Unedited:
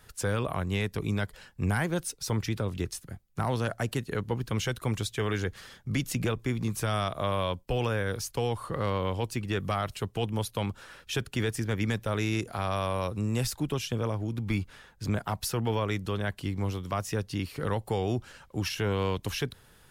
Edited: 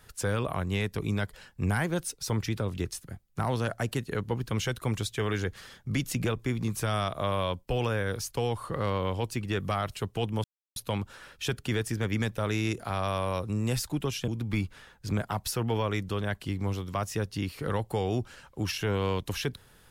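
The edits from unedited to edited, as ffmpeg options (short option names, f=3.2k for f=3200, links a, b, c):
-filter_complex "[0:a]asplit=3[a][b][c];[a]atrim=end=10.44,asetpts=PTS-STARTPTS,afade=t=out:st=10.436:d=0.004:c=hsin,apad=pad_dur=0.32[d];[b]atrim=start=10.44:end=13.962,asetpts=PTS-STARTPTS,afade=t=in:d=0.004:c=hsin[e];[c]atrim=start=14.248[f];[d][e]concat=n=2:v=0:a=1[g];[g][f]acrossfade=d=0.004:c1=hsin:c2=hsin"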